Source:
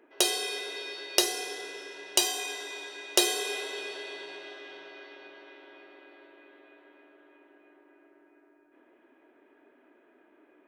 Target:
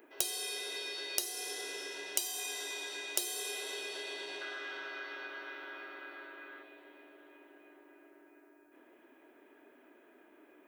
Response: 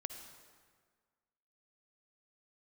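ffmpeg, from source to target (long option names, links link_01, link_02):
-filter_complex "[0:a]asettb=1/sr,asplit=3[link_01][link_02][link_03];[link_01]atrim=end=4.414[link_04];[link_02]atrim=start=4.41:end=6.63,asetpts=PTS-STARTPTS,afade=type=in:duration=0.004:curve=qsin,afade=type=out:start_time=2.216:duration=0.004:curve=qsin,equalizer=frequency=1400:width_type=o:width=0.73:gain=13[link_05];[link_03]atrim=start=6.626[link_06];[link_04][link_05]acrossfade=duration=0.004:curve1=hsin:curve2=qsin[link_07];[link_07][link_06]acrossfade=duration=0.004:curve1=qsin:curve2=hsin,acompressor=threshold=-40dB:ratio=5,aemphasis=mode=production:type=50kf"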